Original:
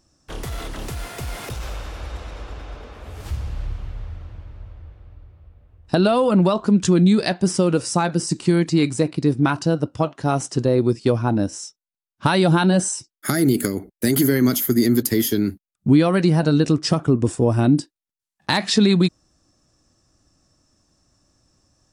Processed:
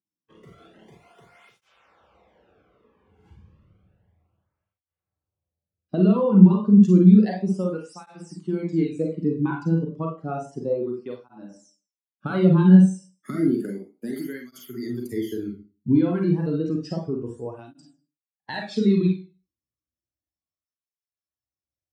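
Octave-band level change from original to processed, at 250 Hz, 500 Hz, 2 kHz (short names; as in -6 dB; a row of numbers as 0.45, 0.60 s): -1.0, -6.0, -12.0 dB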